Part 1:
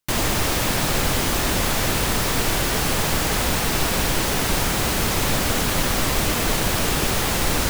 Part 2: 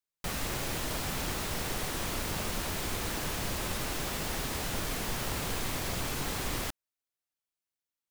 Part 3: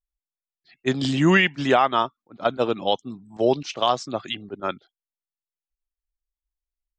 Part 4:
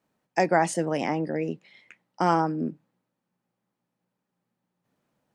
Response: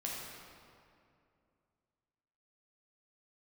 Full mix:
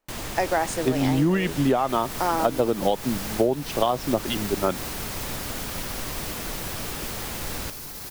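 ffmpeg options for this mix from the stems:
-filter_complex "[0:a]volume=0.251[s0];[1:a]alimiter=level_in=1.26:limit=0.0631:level=0:latency=1:release=51,volume=0.794,aexciter=amount=1:drive=9.8:freq=4400,adelay=1650,volume=0.531[s1];[2:a]lowpass=3400,equalizer=f=2100:w=0.6:g=-12,dynaudnorm=f=380:g=9:m=3.76,volume=1.41[s2];[3:a]highpass=330,volume=1.06[s3];[s0][s1][s2][s3]amix=inputs=4:normalize=0,acompressor=threshold=0.141:ratio=16"

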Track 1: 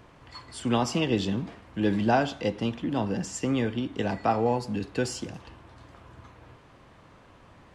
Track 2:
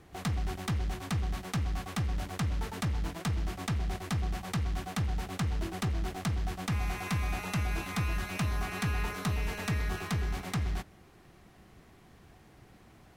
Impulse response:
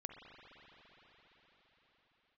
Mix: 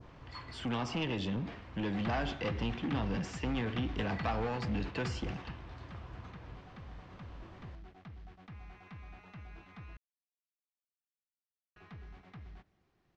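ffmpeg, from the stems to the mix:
-filter_complex "[0:a]lowshelf=f=120:g=8,acrossover=split=3600|7300[s0][s1][s2];[s0]acompressor=threshold=0.0562:ratio=4[s3];[s1]acompressor=threshold=0.00158:ratio=4[s4];[s2]acompressor=threshold=0.00355:ratio=4[s5];[s3][s4][s5]amix=inputs=3:normalize=0,asoftclip=type=tanh:threshold=0.0422,volume=0.75,asplit=2[s6][s7];[1:a]acrossover=split=3500[s8][s9];[s9]acompressor=threshold=0.001:ratio=4:attack=1:release=60[s10];[s8][s10]amix=inputs=2:normalize=0,adelay=1800,volume=0.398,asplit=3[s11][s12][s13];[s11]atrim=end=9.97,asetpts=PTS-STARTPTS,afade=t=out:st=9.966:d=0.004:c=hsin[s14];[s12]atrim=start=9.97:end=11.76,asetpts=PTS-STARTPTS,volume=0[s15];[s13]atrim=start=11.76,asetpts=PTS-STARTPTS,afade=t=in:d=0.004:c=hsin[s16];[s14][s15][s16]concat=n=3:v=0:a=1[s17];[s7]apad=whole_len=660171[s18];[s17][s18]sidechaingate=range=0.316:threshold=0.00708:ratio=16:detection=peak[s19];[s6][s19]amix=inputs=2:normalize=0,lowpass=f=6200:w=0.5412,lowpass=f=6200:w=1.3066,adynamicequalizer=threshold=0.002:dfrequency=2400:dqfactor=0.71:tfrequency=2400:tqfactor=0.71:attack=5:release=100:ratio=0.375:range=2.5:mode=boostabove:tftype=bell"

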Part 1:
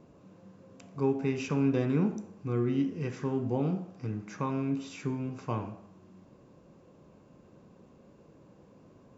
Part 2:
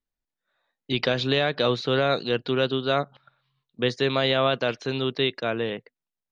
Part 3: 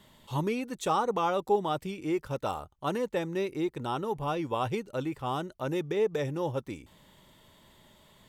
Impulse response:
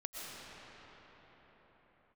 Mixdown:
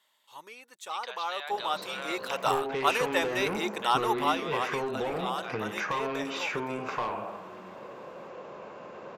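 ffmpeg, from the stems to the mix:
-filter_complex "[0:a]bass=f=250:g=-11,treble=f=4000:g=-14,asplit=2[s0][s1];[s1]highpass=f=720:p=1,volume=11.2,asoftclip=type=tanh:threshold=0.106[s2];[s0][s2]amix=inputs=2:normalize=0,lowpass=f=5700:p=1,volume=0.501,adelay=1500,volume=1.19[s3];[1:a]highpass=f=780:w=0.5412,highpass=f=780:w=1.3066,volume=0.168[s4];[2:a]highpass=920,dynaudnorm=f=300:g=13:m=5.01,volume=0.376,afade=t=out:st=4.2:d=0.27:silence=0.375837[s5];[s3][s4]amix=inputs=2:normalize=0,equalizer=f=290:w=3.6:g=-8,acompressor=threshold=0.0158:ratio=6,volume=1[s6];[s5][s6]amix=inputs=2:normalize=0,dynaudnorm=f=890:g=3:m=2"

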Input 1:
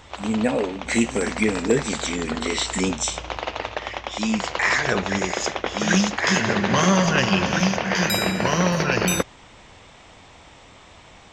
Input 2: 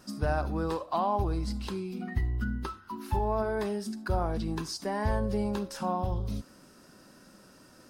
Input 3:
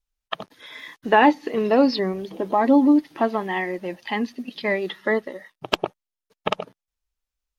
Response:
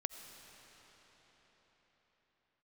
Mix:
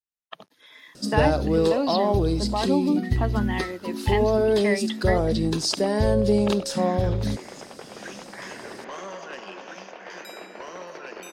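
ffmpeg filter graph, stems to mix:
-filter_complex "[0:a]highpass=f=310:w=0.5412,highpass=f=310:w=1.3066,highshelf=f=2000:g=-8.5,asoftclip=type=tanh:threshold=0.158,adelay=2150,volume=0.237[s0];[1:a]equalizer=f=125:t=o:w=1:g=7,equalizer=f=250:t=o:w=1:g=4,equalizer=f=500:t=o:w=1:g=11,equalizer=f=1000:t=o:w=1:g=-6,equalizer=f=4000:t=o:w=1:g=10,equalizer=f=8000:t=o:w=1:g=8,adelay=950,volume=1.33[s1];[2:a]highpass=110,dynaudnorm=f=230:g=5:m=2.82,adynamicequalizer=threshold=0.02:dfrequency=2800:dqfactor=0.7:tfrequency=2800:tqfactor=0.7:attack=5:release=100:ratio=0.375:range=4:mode=boostabove:tftype=highshelf,volume=0.251,asplit=2[s2][s3];[s3]apad=whole_len=594288[s4];[s0][s4]sidechaincompress=threshold=0.0112:ratio=8:attack=26:release=624[s5];[s5][s1][s2]amix=inputs=3:normalize=0"

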